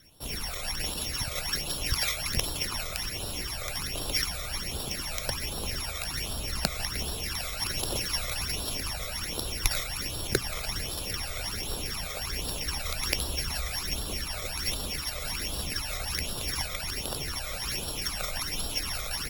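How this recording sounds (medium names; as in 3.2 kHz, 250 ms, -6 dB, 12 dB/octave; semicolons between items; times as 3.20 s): a buzz of ramps at a fixed pitch in blocks of 8 samples; phasing stages 12, 1.3 Hz, lowest notch 280–2100 Hz; Opus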